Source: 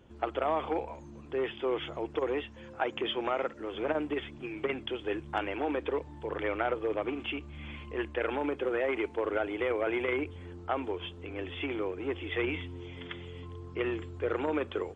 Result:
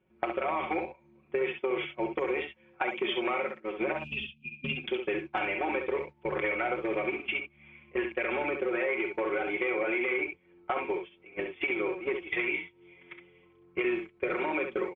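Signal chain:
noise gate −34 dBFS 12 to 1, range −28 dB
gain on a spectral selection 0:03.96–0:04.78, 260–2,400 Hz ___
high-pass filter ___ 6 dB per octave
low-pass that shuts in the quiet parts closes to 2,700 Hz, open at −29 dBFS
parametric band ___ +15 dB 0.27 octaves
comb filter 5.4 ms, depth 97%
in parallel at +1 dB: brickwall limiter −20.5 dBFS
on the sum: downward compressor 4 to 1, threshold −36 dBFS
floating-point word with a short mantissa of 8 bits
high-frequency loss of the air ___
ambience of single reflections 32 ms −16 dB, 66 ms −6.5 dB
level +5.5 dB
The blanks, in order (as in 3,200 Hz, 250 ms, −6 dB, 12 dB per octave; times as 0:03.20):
−26 dB, 83 Hz, 2,300 Hz, 120 metres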